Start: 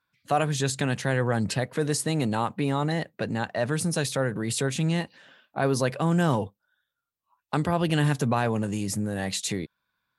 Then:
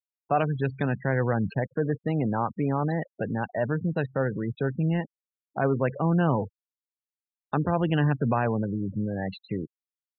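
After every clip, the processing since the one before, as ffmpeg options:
-af "adynamicsmooth=sensitivity=2:basefreq=1500,afftfilt=real='re*gte(hypot(re,im),0.0316)':imag='im*gte(hypot(re,im),0.0316)':win_size=1024:overlap=0.75"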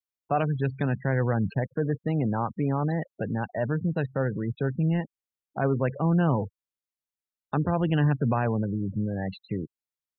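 -af "lowshelf=f=170:g=5.5,volume=0.794"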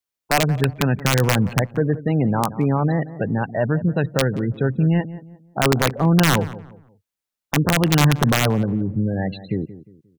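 -filter_complex "[0:a]aeval=exprs='(mod(5.62*val(0)+1,2)-1)/5.62':c=same,asplit=2[s0][s1];[s1]adelay=177,lowpass=f=1300:p=1,volume=0.178,asplit=2[s2][s3];[s3]adelay=177,lowpass=f=1300:p=1,volume=0.34,asplit=2[s4][s5];[s5]adelay=177,lowpass=f=1300:p=1,volume=0.34[s6];[s0][s2][s4][s6]amix=inputs=4:normalize=0,volume=2.24"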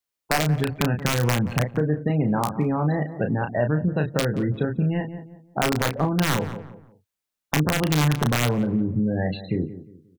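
-filter_complex "[0:a]acompressor=threshold=0.112:ratio=6,asplit=2[s0][s1];[s1]adelay=33,volume=0.501[s2];[s0][s2]amix=inputs=2:normalize=0"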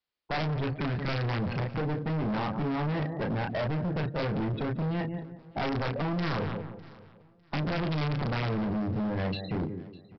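-af "aresample=11025,volume=25.1,asoftclip=hard,volume=0.0398,aresample=44100,aecho=1:1:603|1206:0.0841|0.0227"

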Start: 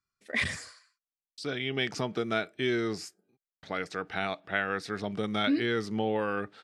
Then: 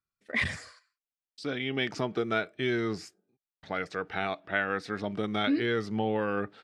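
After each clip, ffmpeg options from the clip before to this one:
-af "agate=range=0.501:threshold=0.00178:ratio=16:detection=peak,highshelf=f=5300:g=-10,aphaser=in_gain=1:out_gain=1:delay=4:decay=0.22:speed=0.31:type=triangular,volume=1.12"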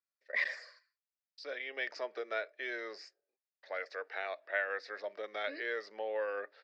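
-af "highpass=f=490:w=0.5412,highpass=f=490:w=1.3066,equalizer=f=560:t=q:w=4:g=9,equalizer=f=800:t=q:w=4:g=-5,equalizer=f=1300:t=q:w=4:g=-4,equalizer=f=1800:t=q:w=4:g=7,equalizer=f=3200:t=q:w=4:g=-7,equalizer=f=4900:t=q:w=4:g=6,lowpass=f=5500:w=0.5412,lowpass=f=5500:w=1.3066,volume=0.447"

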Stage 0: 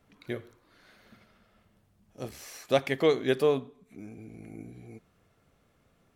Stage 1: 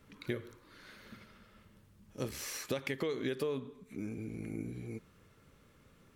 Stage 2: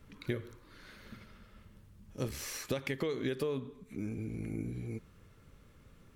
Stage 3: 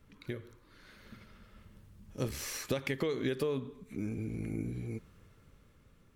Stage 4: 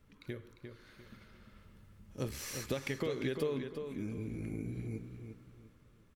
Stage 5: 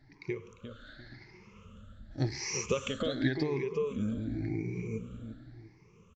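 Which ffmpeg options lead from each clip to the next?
-af "equalizer=f=710:t=o:w=0.27:g=-14,alimiter=limit=0.0794:level=0:latency=1:release=173,acompressor=threshold=0.0141:ratio=5,volume=1.68"
-af "lowshelf=f=96:g=11"
-af "dynaudnorm=f=290:g=9:m=2,volume=0.596"
-filter_complex "[0:a]asplit=2[s0][s1];[s1]adelay=350,lowpass=f=4700:p=1,volume=0.447,asplit=2[s2][s3];[s3]adelay=350,lowpass=f=4700:p=1,volume=0.31,asplit=2[s4][s5];[s5]adelay=350,lowpass=f=4700:p=1,volume=0.31,asplit=2[s6][s7];[s7]adelay=350,lowpass=f=4700:p=1,volume=0.31[s8];[s0][s2][s4][s6][s8]amix=inputs=5:normalize=0,volume=0.708"
-af "afftfilt=real='re*pow(10,20/40*sin(2*PI*(0.78*log(max(b,1)*sr/1024/100)/log(2)-(0.9)*(pts-256)/sr)))':imag='im*pow(10,20/40*sin(2*PI*(0.78*log(max(b,1)*sr/1024/100)/log(2)-(0.9)*(pts-256)/sr)))':win_size=1024:overlap=0.75,aresample=16000,aresample=44100,volume=1.19"

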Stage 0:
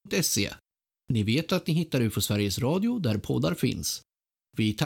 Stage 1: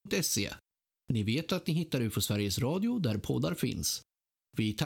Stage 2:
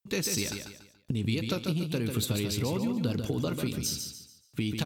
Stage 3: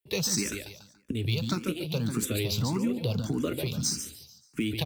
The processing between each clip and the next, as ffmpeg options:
-af "acompressor=threshold=0.0447:ratio=6"
-af "aecho=1:1:143|286|429|572:0.501|0.175|0.0614|0.0215"
-filter_complex "[0:a]acrossover=split=110|1400[s0][s1][s2];[s2]acrusher=bits=3:mode=log:mix=0:aa=0.000001[s3];[s0][s1][s3]amix=inputs=3:normalize=0,asplit=2[s4][s5];[s5]afreqshift=1.7[s6];[s4][s6]amix=inputs=2:normalize=1,volume=1.58"

